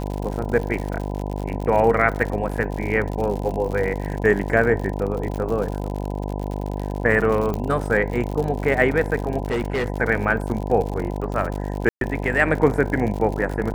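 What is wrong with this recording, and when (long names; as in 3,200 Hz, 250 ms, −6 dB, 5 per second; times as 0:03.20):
mains buzz 50 Hz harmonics 20 −27 dBFS
surface crackle 86 per second −27 dBFS
0:07.54: click −14 dBFS
0:09.46–0:09.88: clipping −19 dBFS
0:11.89–0:12.01: drop-out 122 ms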